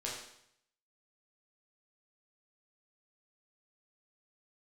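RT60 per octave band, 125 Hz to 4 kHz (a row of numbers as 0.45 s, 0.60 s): 0.85 s, 0.70 s, 0.70 s, 0.70 s, 0.70 s, 0.70 s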